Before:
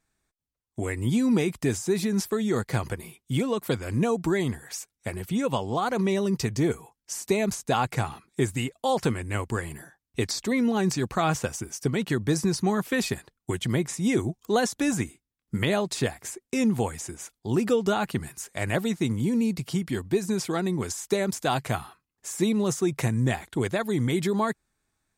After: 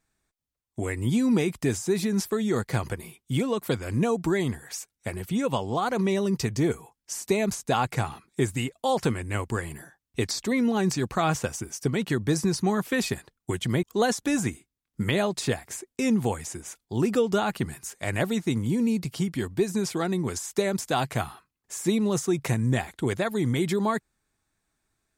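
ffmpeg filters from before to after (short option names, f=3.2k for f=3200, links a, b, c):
-filter_complex "[0:a]asplit=2[a][b];[a]atrim=end=13.832[c];[b]atrim=start=14.368[d];[c][d]acrossfade=d=0.004:c1=hsin:c2=hsin"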